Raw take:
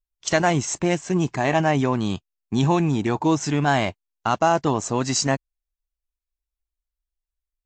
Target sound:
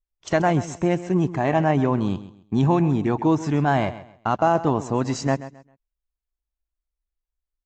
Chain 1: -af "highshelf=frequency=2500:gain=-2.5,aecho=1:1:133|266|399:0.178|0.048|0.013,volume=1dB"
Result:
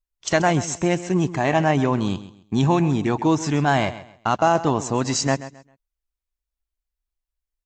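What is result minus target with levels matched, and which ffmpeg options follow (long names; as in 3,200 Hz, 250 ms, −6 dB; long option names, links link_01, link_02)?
4,000 Hz band +7.5 dB
-af "highshelf=frequency=2500:gain=-14.5,aecho=1:1:133|266|399:0.178|0.048|0.013,volume=1dB"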